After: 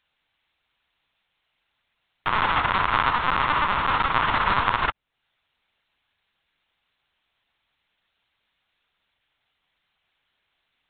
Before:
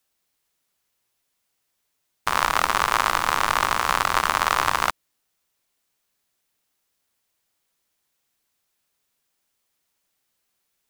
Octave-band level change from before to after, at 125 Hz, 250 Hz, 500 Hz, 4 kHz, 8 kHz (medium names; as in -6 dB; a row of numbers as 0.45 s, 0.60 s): +5.5 dB, +3.5 dB, -2.0 dB, -2.5 dB, under -40 dB